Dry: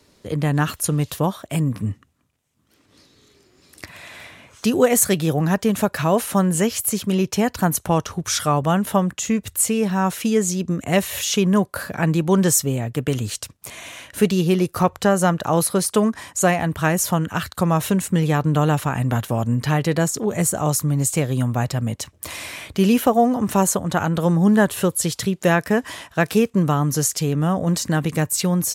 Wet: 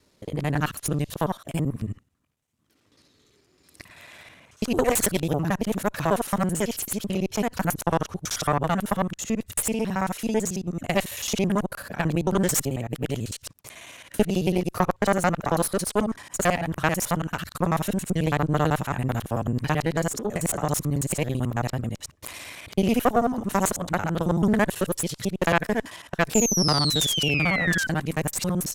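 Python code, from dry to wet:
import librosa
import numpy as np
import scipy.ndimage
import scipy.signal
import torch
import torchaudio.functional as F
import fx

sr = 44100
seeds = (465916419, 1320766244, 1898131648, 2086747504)

y = fx.local_reverse(x, sr, ms=55.0)
y = fx.spec_paint(y, sr, seeds[0], shape='fall', start_s=26.34, length_s=1.53, low_hz=1500.0, high_hz=7300.0, level_db=-20.0)
y = fx.cheby_harmonics(y, sr, harmonics=(2, 3, 6, 8), levels_db=(-7, -23, -26, -42), full_scale_db=-1.5)
y = F.gain(torch.from_numpy(y), -4.5).numpy()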